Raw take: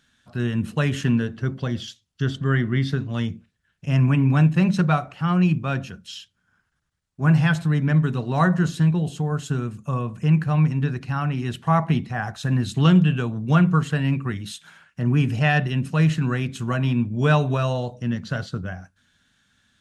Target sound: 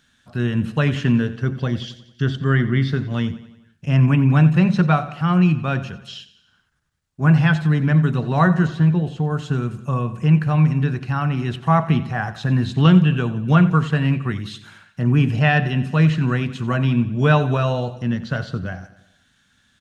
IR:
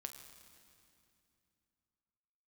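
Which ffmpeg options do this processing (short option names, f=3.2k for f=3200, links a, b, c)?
-filter_complex "[0:a]acrossover=split=5000[a][b];[b]acompressor=threshold=-58dB:ratio=4:attack=1:release=60[c];[a][c]amix=inputs=2:normalize=0,asettb=1/sr,asplit=3[d][e][f];[d]atrim=end=8.674[g];[e]atrim=start=8.67:end=9.31,asetpts=PTS-STARTPTS,afade=t=in:d=0.004:c=qsin,afade=t=out:st=0.636:d=0.004:c=qsin,highshelf=f=3.9k:g=-8.5[h];[f]atrim=start=9.306[i];[g][h]acrossfade=d=0.004:c1=hsin:c2=qsin[j];[j][i]acrossfade=d=0.004:c1=qsin:c2=hsin,aecho=1:1:90|180|270|360|450:0.158|0.0872|0.0479|0.0264|0.0145,volume=3dB"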